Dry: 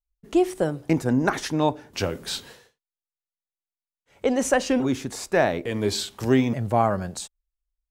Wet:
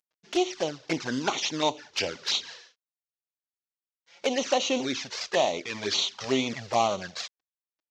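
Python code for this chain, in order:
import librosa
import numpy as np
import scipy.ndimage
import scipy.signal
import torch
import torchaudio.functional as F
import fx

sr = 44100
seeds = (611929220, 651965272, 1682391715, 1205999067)

y = fx.cvsd(x, sr, bps=32000)
y = fx.highpass(y, sr, hz=1200.0, slope=6)
y = fx.high_shelf(y, sr, hz=3200.0, db=7.0)
y = fx.env_flanger(y, sr, rest_ms=6.4, full_db=-27.0)
y = y * librosa.db_to_amplitude(6.0)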